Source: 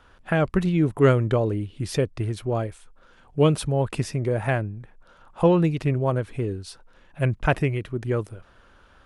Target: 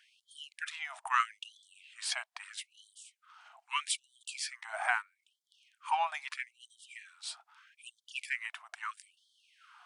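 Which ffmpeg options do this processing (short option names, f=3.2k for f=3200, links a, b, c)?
-af "asetrate=40517,aresample=44100,afftfilt=real='re*gte(b*sr/1024,610*pow(3100/610,0.5+0.5*sin(2*PI*0.78*pts/sr)))':imag='im*gte(b*sr/1024,610*pow(3100/610,0.5+0.5*sin(2*PI*0.78*pts/sr)))':win_size=1024:overlap=0.75"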